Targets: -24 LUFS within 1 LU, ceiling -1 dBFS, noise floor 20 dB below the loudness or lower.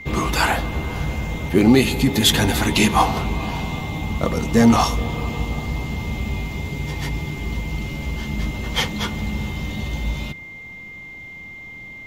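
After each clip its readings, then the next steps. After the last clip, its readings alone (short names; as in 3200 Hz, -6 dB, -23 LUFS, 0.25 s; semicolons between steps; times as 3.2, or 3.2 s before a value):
steady tone 2100 Hz; tone level -35 dBFS; loudness -21.0 LUFS; peak -1.5 dBFS; loudness target -24.0 LUFS
-> notch 2100 Hz, Q 30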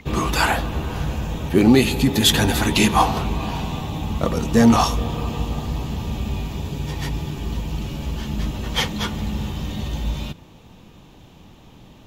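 steady tone none; loudness -21.5 LUFS; peak -1.5 dBFS; loudness target -24.0 LUFS
-> gain -2.5 dB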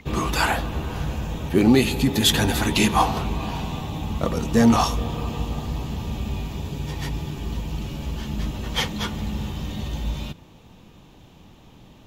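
loudness -24.0 LUFS; peak -4.0 dBFS; noise floor -49 dBFS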